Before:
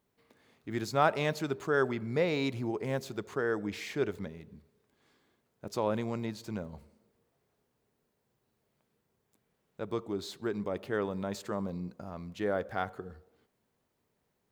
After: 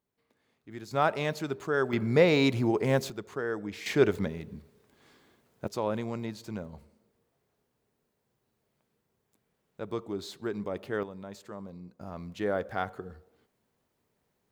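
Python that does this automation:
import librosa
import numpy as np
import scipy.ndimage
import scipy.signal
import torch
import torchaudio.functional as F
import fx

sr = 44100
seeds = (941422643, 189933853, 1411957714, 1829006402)

y = fx.gain(x, sr, db=fx.steps((0.0, -8.0), (0.91, 0.0), (1.93, 7.5), (3.1, -1.5), (3.86, 8.5), (5.67, 0.0), (11.03, -7.5), (12.01, 1.5)))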